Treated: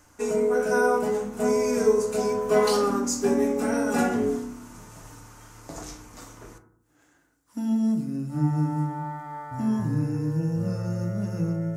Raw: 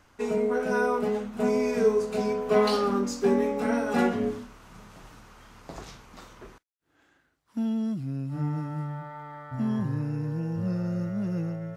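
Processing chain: resonant high shelf 5.1 kHz +9 dB, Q 1.5; FDN reverb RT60 0.65 s, low-frequency decay 1.5×, high-frequency decay 0.3×, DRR 4 dB

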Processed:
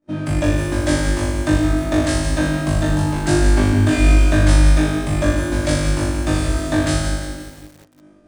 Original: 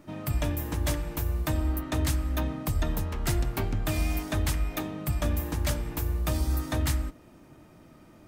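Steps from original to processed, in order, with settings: on a send: flutter echo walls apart 3.4 m, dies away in 1.2 s; on the sum: expander -36 dBFS; resampled via 22.05 kHz; small resonant body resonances 300/570/1600 Hz, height 10 dB, ringing for 30 ms; bit-crushed delay 171 ms, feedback 55%, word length 7-bit, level -8 dB; trim +3 dB

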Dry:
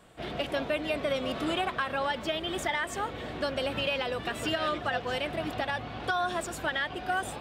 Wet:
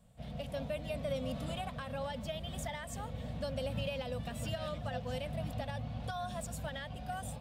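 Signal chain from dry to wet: FFT filter 250 Hz 0 dB, 350 Hz -30 dB, 510 Hz -9 dB, 1.4 kHz -21 dB, 11 kHz -7 dB; level rider gain up to 4 dB; peaking EQ 250 Hz -6.5 dB 0.65 oct

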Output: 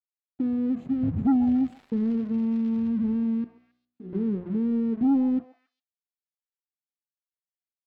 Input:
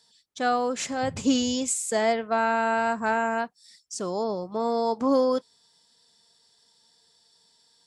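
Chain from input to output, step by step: inverse Chebyshev band-stop 600–10000 Hz, stop band 40 dB; treble shelf 3.6 kHz +12 dB; hum notches 60/120/180/240/300/360/420 Hz; in parallel at +1 dB: compression, threshold -38 dBFS, peak gain reduction 17 dB; on the sum: crossover distortion -52.5 dBFS; 3.44–4.13 s: inharmonic resonator 60 Hz, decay 0.74 s, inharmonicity 0.002; saturation -24 dBFS, distortion -13 dB; 1.43–2.87 s: crackle 240 per s -43 dBFS; distance through air 250 m; on a send: repeats whose band climbs or falls 136 ms, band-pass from 750 Hz, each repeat 1.4 oct, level -9 dB; on the sum: trim +7.5 dB

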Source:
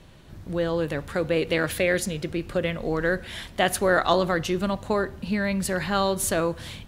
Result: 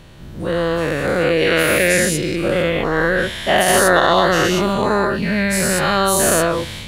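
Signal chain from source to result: every event in the spectrogram widened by 240 ms; 0.63–2.03 s: crackle 150 per s -39 dBFS; loudness maximiser +3.5 dB; trim -1 dB

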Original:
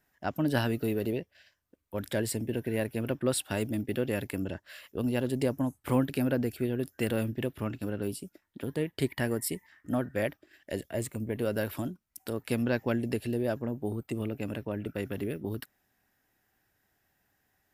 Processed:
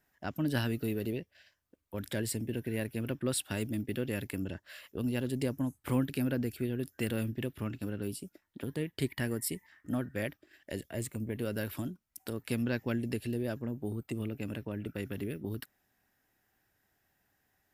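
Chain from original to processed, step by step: dynamic bell 710 Hz, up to -7 dB, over -43 dBFS, Q 0.83; trim -1.5 dB

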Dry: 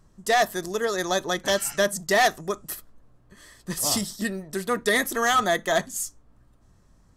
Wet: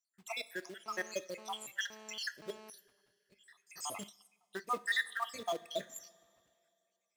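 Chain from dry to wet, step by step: random holes in the spectrogram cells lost 79%; treble shelf 11 kHz -3.5 dB; short-mantissa float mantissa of 2-bit; high-pass 980 Hz 6 dB/octave; treble shelf 5.2 kHz -9 dB; two-slope reverb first 0.34 s, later 2.6 s, from -16 dB, DRR 13 dB; 0.86–2.70 s: mobile phone buzz -51 dBFS; 4.09–4.69 s: upward expansion 1.5:1, over -53 dBFS; trim -3 dB

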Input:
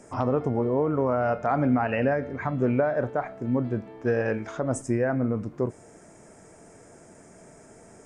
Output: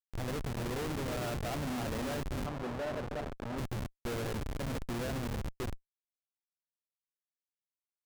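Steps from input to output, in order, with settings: backward echo that repeats 160 ms, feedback 82%, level -11 dB; Schmitt trigger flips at -25 dBFS; 2.46–3.58 s: overdrive pedal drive 14 dB, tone 2 kHz, clips at -20 dBFS; trim -9 dB

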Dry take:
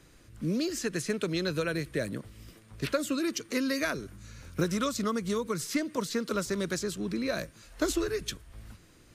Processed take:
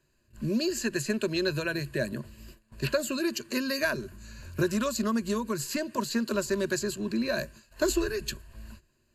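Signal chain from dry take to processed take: gate -50 dBFS, range -15 dB; rippled EQ curve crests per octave 1.4, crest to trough 12 dB

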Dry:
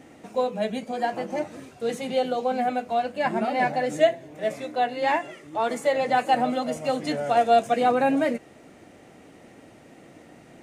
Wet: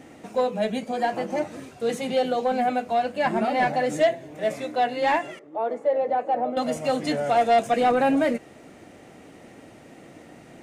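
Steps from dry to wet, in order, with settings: saturation -15 dBFS, distortion -16 dB; 5.39–6.57 s: band-pass filter 530 Hz, Q 1.4; trim +2.5 dB

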